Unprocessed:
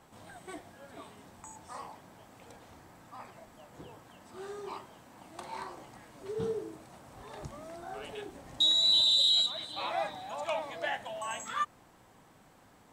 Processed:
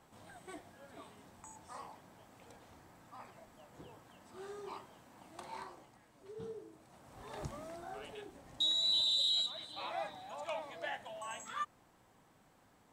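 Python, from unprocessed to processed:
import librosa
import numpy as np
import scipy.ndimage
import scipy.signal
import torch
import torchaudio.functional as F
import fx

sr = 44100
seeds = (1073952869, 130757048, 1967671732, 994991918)

y = fx.gain(x, sr, db=fx.line((5.55, -5.0), (5.98, -12.0), (6.71, -12.0), (7.42, 0.5), (8.21, -7.0)))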